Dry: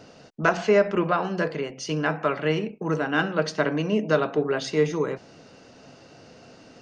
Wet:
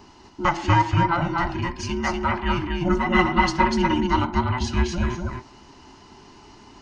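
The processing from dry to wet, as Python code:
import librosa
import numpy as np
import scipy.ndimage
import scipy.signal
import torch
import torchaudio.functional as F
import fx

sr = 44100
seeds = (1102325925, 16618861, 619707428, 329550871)

y = fx.band_invert(x, sr, width_hz=500)
y = fx.comb(y, sr, ms=5.5, depth=0.91, at=(2.72, 4.06))
y = y + 10.0 ** (-3.0 / 20.0) * np.pad(y, (int(244 * sr / 1000.0), 0))[:len(y)]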